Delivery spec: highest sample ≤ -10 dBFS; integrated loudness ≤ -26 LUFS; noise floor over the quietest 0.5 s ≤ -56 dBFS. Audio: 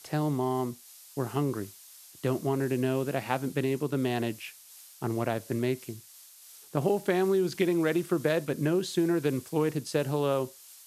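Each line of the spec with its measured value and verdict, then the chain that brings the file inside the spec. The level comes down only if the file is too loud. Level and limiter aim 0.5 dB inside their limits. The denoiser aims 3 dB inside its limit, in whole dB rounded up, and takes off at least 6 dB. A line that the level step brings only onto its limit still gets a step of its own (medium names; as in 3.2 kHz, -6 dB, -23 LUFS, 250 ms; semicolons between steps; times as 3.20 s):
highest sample -10.5 dBFS: pass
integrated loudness -29.5 LUFS: pass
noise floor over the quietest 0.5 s -52 dBFS: fail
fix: noise reduction 7 dB, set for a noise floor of -52 dBFS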